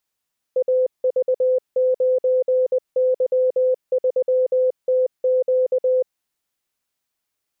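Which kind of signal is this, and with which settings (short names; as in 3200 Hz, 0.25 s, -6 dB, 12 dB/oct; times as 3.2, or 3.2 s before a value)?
Morse "AV9Y3TQ" 20 wpm 511 Hz -14.5 dBFS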